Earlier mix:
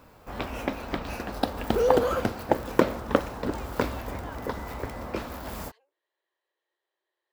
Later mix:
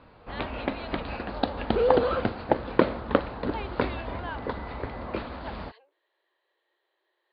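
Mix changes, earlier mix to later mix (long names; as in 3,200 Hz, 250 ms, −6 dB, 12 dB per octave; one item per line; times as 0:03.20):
speech +9.0 dB
master: add Butterworth low-pass 4,600 Hz 96 dB per octave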